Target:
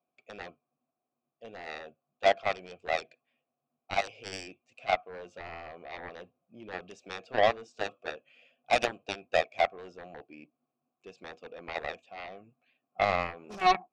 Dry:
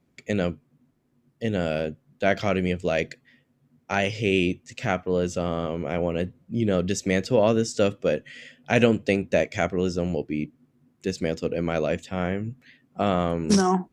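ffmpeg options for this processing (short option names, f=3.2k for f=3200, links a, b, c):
-filter_complex "[0:a]asplit=3[a][b][c];[a]bandpass=f=730:t=q:w=8,volume=0dB[d];[b]bandpass=f=1.09k:t=q:w=8,volume=-6dB[e];[c]bandpass=f=2.44k:t=q:w=8,volume=-9dB[f];[d][e][f]amix=inputs=3:normalize=0,aeval=exprs='0.141*(cos(1*acos(clip(val(0)/0.141,-1,1)))-cos(1*PI/2))+0.0316*(cos(7*acos(clip(val(0)/0.141,-1,1)))-cos(7*PI/2))':c=same,volume=4.5dB"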